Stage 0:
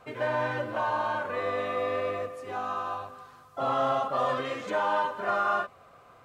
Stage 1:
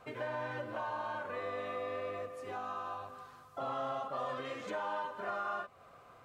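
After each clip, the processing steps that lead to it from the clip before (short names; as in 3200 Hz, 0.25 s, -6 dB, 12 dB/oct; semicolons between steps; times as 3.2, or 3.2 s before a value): compressor 2:1, threshold -38 dBFS, peak gain reduction 8.5 dB; gain -3 dB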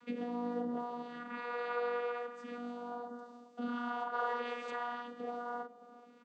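phaser stages 2, 0.4 Hz, lowest notch 210–2000 Hz; vocoder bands 16, saw 241 Hz; outdoor echo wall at 73 m, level -19 dB; gain +6 dB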